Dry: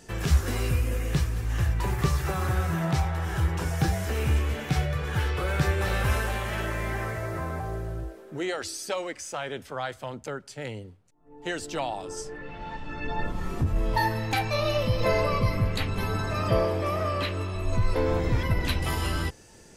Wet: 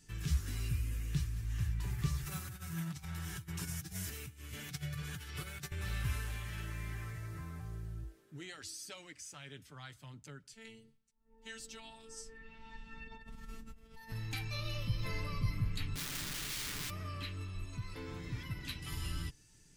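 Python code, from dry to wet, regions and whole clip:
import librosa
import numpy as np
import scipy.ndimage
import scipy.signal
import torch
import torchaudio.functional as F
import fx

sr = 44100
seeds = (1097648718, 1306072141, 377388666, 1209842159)

y = fx.chain(x, sr, fx.high_shelf(hz=5500.0, db=9.0),
    fx.over_compress(threshold_db=-28.0, ratio=-0.5),
    fx.highpass(hz=95.0, slope=12), at=(2.24, 5.72))
y = fx.chain(y, sr, fx.robotise(hz=224.0),
    fx.over_compress(threshold_db=-32.0, ratio=-1.0), at=(10.53, 14.12))
y = fx.chain(y, sr, fx.low_shelf(hz=280.0, db=9.0),
    fx.overflow_wrap(gain_db=23.5), at=(15.95, 16.9))
y = fx.chain(y, sr, fx.highpass(hz=190.0, slope=6),
    fx.high_shelf(hz=12000.0, db=-5.0),
    fx.quant_float(bits=8), at=(17.65, 18.92))
y = fx.tone_stack(y, sr, knobs='6-0-2')
y = fx.notch(y, sr, hz=480.0, q=12.0)
y = y + 0.38 * np.pad(y, (int(6.8 * sr / 1000.0), 0))[:len(y)]
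y = y * librosa.db_to_amplitude(4.5)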